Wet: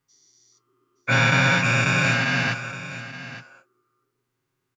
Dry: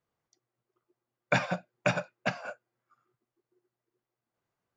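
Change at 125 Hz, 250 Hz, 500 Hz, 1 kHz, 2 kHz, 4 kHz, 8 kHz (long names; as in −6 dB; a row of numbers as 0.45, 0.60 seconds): +15.5, +12.0, +4.0, +10.0, +15.0, +16.0, +16.0 decibels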